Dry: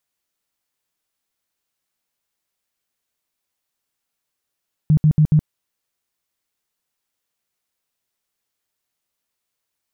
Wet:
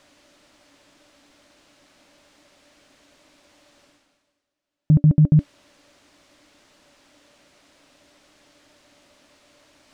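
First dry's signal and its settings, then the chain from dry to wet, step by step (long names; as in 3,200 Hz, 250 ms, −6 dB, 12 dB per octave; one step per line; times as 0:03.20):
tone bursts 153 Hz, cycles 11, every 0.14 s, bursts 4, −9.5 dBFS
high-frequency loss of the air 96 metres
reversed playback
upward compression, threshold −36 dBFS
reversed playback
hollow resonant body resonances 290/580 Hz, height 15 dB, ringing for 85 ms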